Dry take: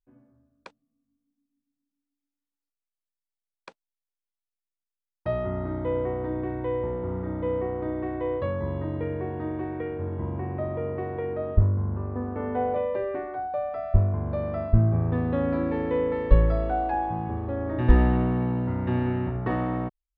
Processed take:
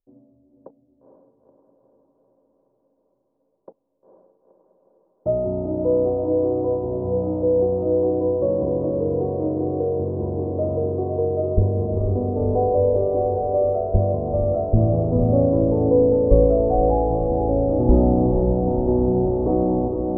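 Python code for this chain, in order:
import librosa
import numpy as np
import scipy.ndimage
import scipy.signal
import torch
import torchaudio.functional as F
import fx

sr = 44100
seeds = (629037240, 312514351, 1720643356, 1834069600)

y = scipy.signal.sosfilt(scipy.signal.cheby2(4, 70, 3100.0, 'lowpass', fs=sr, output='sos'), x)
y = fx.peak_eq(y, sr, hz=500.0, db=10.0, octaves=2.8)
y = fx.echo_diffused(y, sr, ms=475, feedback_pct=68, wet_db=-5)
y = F.gain(torch.from_numpy(y), -1.0).numpy()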